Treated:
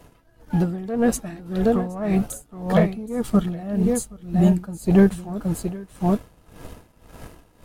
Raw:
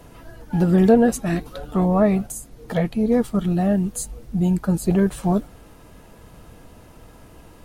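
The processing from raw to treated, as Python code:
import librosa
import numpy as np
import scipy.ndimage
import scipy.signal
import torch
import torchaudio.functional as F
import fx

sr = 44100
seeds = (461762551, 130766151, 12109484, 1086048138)

p1 = x + fx.echo_single(x, sr, ms=771, db=-7.5, dry=0)
p2 = fx.leveller(p1, sr, passes=1)
p3 = fx.rider(p2, sr, range_db=5, speed_s=2.0)
y = p3 * 10.0 ** (-18 * (0.5 - 0.5 * np.cos(2.0 * np.pi * 1.8 * np.arange(len(p3)) / sr)) / 20.0)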